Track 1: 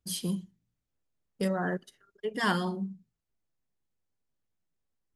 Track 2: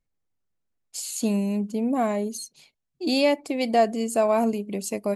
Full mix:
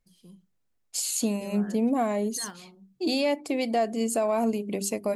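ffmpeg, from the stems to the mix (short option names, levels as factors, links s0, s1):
-filter_complex "[0:a]deesser=0.9,volume=0.266[s0];[1:a]acontrast=28,bandreject=f=50:t=h:w=6,bandreject=f=100:t=h:w=6,bandreject=f=150:t=h:w=6,bandreject=f=200:t=h:w=6,bandreject=f=250:t=h:w=6,bandreject=f=300:t=h:w=6,bandreject=f=350:t=h:w=6,bandreject=f=400:t=h:w=6,volume=0.841,asplit=2[s1][s2];[s2]apad=whole_len=227414[s3];[s0][s3]sidechaingate=range=0.398:threshold=0.0126:ratio=16:detection=peak[s4];[s4][s1]amix=inputs=2:normalize=0,alimiter=limit=0.141:level=0:latency=1:release=412"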